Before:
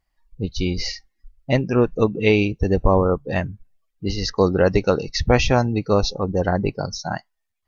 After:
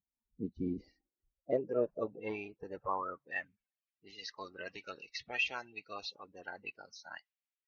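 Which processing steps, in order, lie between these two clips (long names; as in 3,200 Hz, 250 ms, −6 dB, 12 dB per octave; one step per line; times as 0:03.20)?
spectral magnitudes quantised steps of 30 dB
band-pass filter sweep 240 Hz → 2,600 Hz, 0:00.64–0:03.67
one half of a high-frequency compander decoder only
level −7.5 dB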